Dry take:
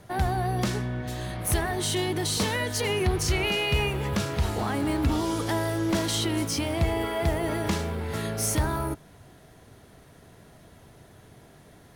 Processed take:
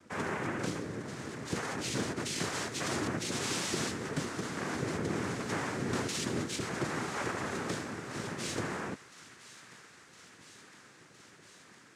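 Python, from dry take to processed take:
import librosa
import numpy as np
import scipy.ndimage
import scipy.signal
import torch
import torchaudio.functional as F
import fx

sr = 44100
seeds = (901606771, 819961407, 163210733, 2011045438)

y = fx.noise_vocoder(x, sr, seeds[0], bands=3)
y = fx.echo_wet_highpass(y, sr, ms=1011, feedback_pct=76, hz=1500.0, wet_db=-15.5)
y = F.gain(torch.from_numpy(y), -7.5).numpy()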